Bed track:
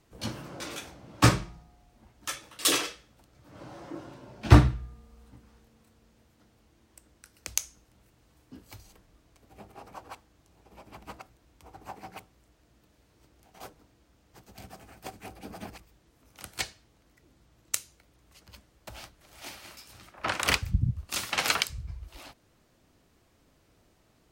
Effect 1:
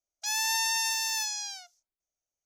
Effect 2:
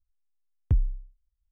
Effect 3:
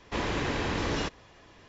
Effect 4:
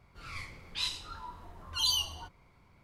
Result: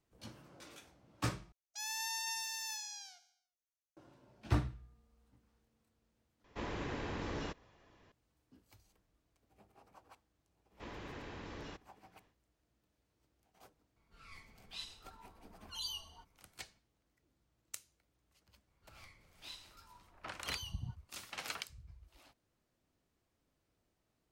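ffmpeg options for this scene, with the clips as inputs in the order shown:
ffmpeg -i bed.wav -i cue0.wav -i cue1.wav -i cue2.wav -i cue3.wav -filter_complex "[3:a]asplit=2[link_01][link_02];[4:a]asplit=2[link_03][link_04];[0:a]volume=-16.5dB[link_05];[1:a]aecho=1:1:71|142|213|284|355:0.2|0.106|0.056|0.0297|0.0157[link_06];[link_01]equalizer=frequency=5700:width=0.35:gain=-4.5[link_07];[link_02]highshelf=frequency=4600:gain=-5[link_08];[link_03]aecho=1:1:4.5:0.46[link_09];[link_05]asplit=3[link_10][link_11][link_12];[link_10]atrim=end=1.524[link_13];[link_06]atrim=end=2.45,asetpts=PTS-STARTPTS,volume=-12dB[link_14];[link_11]atrim=start=3.966:end=6.444[link_15];[link_07]atrim=end=1.68,asetpts=PTS-STARTPTS,volume=-10dB[link_16];[link_12]atrim=start=8.116[link_17];[link_08]atrim=end=1.68,asetpts=PTS-STARTPTS,volume=-17.5dB,afade=type=in:duration=0.1,afade=type=out:start_time=1.58:duration=0.1,adelay=10680[link_18];[link_09]atrim=end=2.83,asetpts=PTS-STARTPTS,volume=-14dB,afade=type=in:duration=0.004:curve=hsin,afade=type=out:start_time=2.826:duration=0.004:curve=hsin,adelay=615636S[link_19];[link_04]atrim=end=2.83,asetpts=PTS-STARTPTS,volume=-17dB,afade=type=in:duration=0.004:curve=hsin,afade=type=out:start_time=2.826:duration=0.004:curve=hsin,adelay=18670[link_20];[link_13][link_14]acrossfade=duration=0.004:curve1=hsin:curve2=hsin[link_21];[link_21][link_15]acrossfade=duration=0.004:curve1=hsin:curve2=hsin[link_22];[link_22][link_16]acrossfade=duration=0.004:curve1=hsin:curve2=hsin[link_23];[link_23][link_17]acrossfade=duration=0.004:curve1=hsin:curve2=hsin[link_24];[link_24][link_18][link_19][link_20]amix=inputs=4:normalize=0" out.wav

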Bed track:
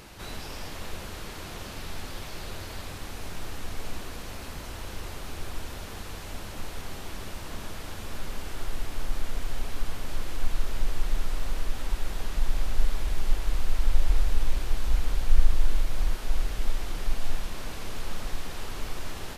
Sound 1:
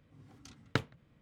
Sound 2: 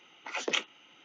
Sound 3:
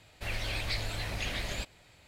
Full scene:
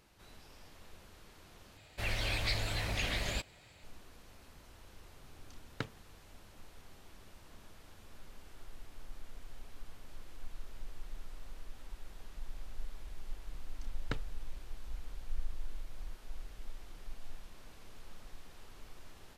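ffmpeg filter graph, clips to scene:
ffmpeg -i bed.wav -i cue0.wav -i cue1.wav -i cue2.wav -filter_complex "[1:a]asplit=2[link_01][link_02];[0:a]volume=-18.5dB,asplit=2[link_03][link_04];[link_03]atrim=end=1.774[link_05];[3:a]atrim=end=2.07[link_06];[link_04]atrim=start=3.836[link_07];[link_01]atrim=end=1.21,asetpts=PTS-STARTPTS,volume=-8dB,afade=type=in:duration=0.004:curve=hsin,afade=type=out:start_time=1.206:duration=0.004:curve=hsin,adelay=222705S[link_08];[link_02]atrim=end=1.21,asetpts=PTS-STARTPTS,volume=-8dB,afade=type=in:duration=0.004:curve=hsin,afade=type=out:start_time=1.206:duration=0.004:curve=hsin,adelay=13360[link_09];[link_05][link_06]acrossfade=duration=0.004:curve1=hsin:curve2=hsin[link_10];[link_10][link_07]acrossfade=duration=0.004:curve1=hsin:curve2=hsin[link_11];[link_11][link_08][link_09]amix=inputs=3:normalize=0" out.wav

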